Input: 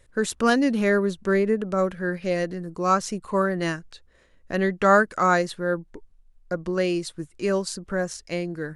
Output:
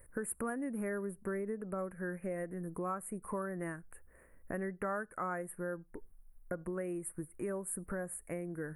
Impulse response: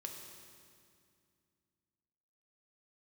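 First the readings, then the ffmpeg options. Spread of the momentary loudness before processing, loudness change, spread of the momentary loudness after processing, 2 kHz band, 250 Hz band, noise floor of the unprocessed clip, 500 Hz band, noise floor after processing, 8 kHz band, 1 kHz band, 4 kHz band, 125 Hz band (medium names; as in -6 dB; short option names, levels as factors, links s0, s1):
11 LU, -15.5 dB, 6 LU, -17.5 dB, -14.5 dB, -58 dBFS, -15.5 dB, -62 dBFS, -8.0 dB, -18.0 dB, under -40 dB, -13.5 dB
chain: -filter_complex "[0:a]highshelf=f=9500:g=-5.5,acompressor=threshold=0.0158:ratio=4,aexciter=amount=9.6:drive=1.4:freq=5600,asuperstop=centerf=4800:order=8:qfactor=0.61,asplit=2[s0][s1];[1:a]atrim=start_sample=2205,afade=t=out:st=0.19:d=0.01,atrim=end_sample=8820,asetrate=57330,aresample=44100[s2];[s1][s2]afir=irnorm=-1:irlink=0,volume=0.15[s3];[s0][s3]amix=inputs=2:normalize=0,volume=0.75"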